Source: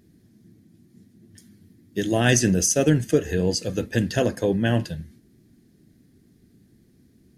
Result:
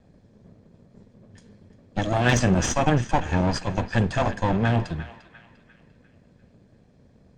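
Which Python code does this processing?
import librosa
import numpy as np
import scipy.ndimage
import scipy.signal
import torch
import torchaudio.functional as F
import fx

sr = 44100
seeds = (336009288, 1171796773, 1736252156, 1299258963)

p1 = fx.lower_of_two(x, sr, delay_ms=1.2)
p2 = scipy.signal.sosfilt(scipy.signal.cheby1(4, 1.0, 8200.0, 'lowpass', fs=sr, output='sos'), p1)
p3 = fx.high_shelf(p2, sr, hz=4500.0, db=-11.5)
p4 = p3 + fx.echo_banded(p3, sr, ms=348, feedback_pct=47, hz=2100.0, wet_db=-12, dry=0)
p5 = fx.slew_limit(p4, sr, full_power_hz=330.0)
y = p5 * 10.0 ** (4.0 / 20.0)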